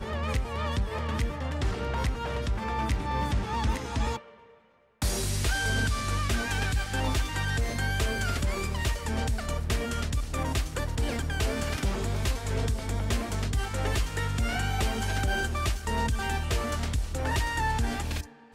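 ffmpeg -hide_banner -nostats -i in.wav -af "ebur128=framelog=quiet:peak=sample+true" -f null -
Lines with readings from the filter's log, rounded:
Integrated loudness:
  I:         -29.9 LUFS
  Threshold: -40.0 LUFS
Loudness range:
  LRA:         1.9 LU
  Threshold: -49.9 LUFS
  LRA low:   -30.8 LUFS
  LRA high:  -28.9 LUFS
Sample peak:
  Peak:      -15.1 dBFS
True peak:
  Peak:      -15.2 dBFS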